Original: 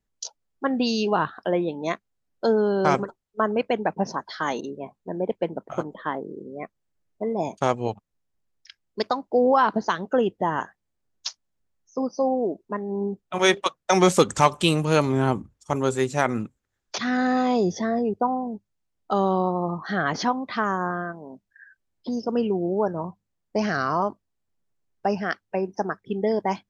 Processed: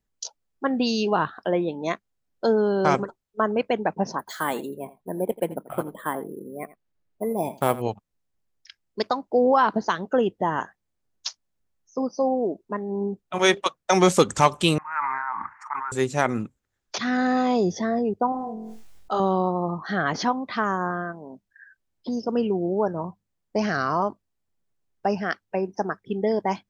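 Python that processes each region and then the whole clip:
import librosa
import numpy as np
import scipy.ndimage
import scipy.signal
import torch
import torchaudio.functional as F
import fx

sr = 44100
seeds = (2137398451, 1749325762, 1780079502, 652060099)

y = fx.chain(x, sr, fx.echo_single(ms=85, db=-18.0),
    fx.resample_bad(factor=4, down='filtered', up='hold'), at=(4.19, 7.82))
y = fx.chain(y, sr, fx.ellip_bandpass(low_hz=900.0, high_hz=2000.0, order=3, stop_db=40),
    fx.sustainer(db_per_s=25.0), at=(14.78, 15.92))
y = fx.chain(y, sr, fx.peak_eq(hz=190.0, db=-7.5, octaves=2.7),
    fx.room_flutter(wall_m=3.9, rt60_s=0.31),
    fx.sustainer(db_per_s=26.0), at=(18.32, 19.2))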